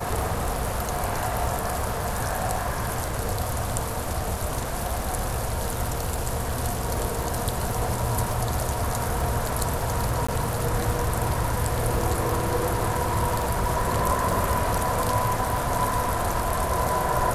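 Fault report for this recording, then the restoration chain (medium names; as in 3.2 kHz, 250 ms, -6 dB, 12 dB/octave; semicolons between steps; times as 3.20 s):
crackle 22 per s -29 dBFS
10.27–10.29 s: dropout 15 ms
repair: de-click; interpolate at 10.27 s, 15 ms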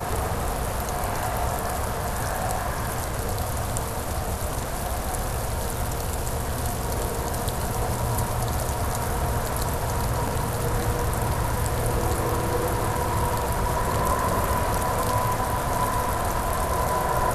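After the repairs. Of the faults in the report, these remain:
nothing left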